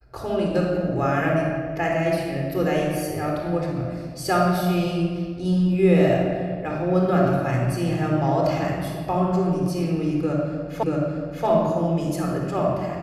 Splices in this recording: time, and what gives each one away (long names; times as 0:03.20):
0:10.83: the same again, the last 0.63 s